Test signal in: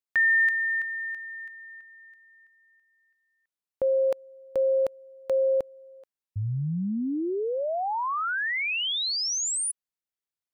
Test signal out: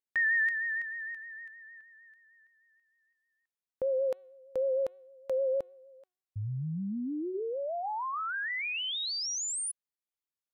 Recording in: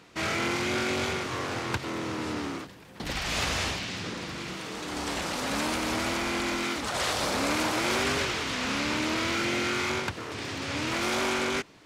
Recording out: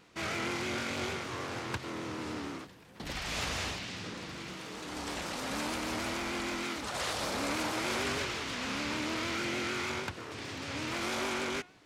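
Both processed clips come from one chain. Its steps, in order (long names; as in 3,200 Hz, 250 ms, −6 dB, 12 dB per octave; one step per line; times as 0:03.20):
hum removal 370 Hz, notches 11
pitch vibrato 6.5 Hz 52 cents
level −6 dB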